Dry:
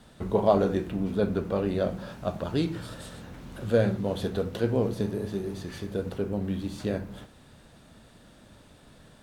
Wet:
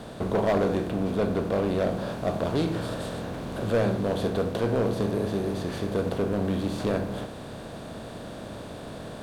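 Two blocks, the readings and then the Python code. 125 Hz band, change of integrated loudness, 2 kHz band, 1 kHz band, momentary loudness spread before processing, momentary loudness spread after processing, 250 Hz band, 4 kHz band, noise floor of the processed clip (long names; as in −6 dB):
+1.5 dB, +1.0 dB, +4.5 dB, +2.5 dB, 15 LU, 14 LU, +2.0 dB, +3.5 dB, −40 dBFS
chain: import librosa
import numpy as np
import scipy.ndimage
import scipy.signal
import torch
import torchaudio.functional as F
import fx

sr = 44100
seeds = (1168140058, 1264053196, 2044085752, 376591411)

p1 = fx.bin_compress(x, sr, power=0.6)
p2 = fx.rider(p1, sr, range_db=3, speed_s=2.0)
p3 = p1 + (p2 * librosa.db_to_amplitude(-1.0))
p4 = np.clip(p3, -10.0 ** (-11.5 / 20.0), 10.0 ** (-11.5 / 20.0))
y = p4 * librosa.db_to_amplitude(-7.0)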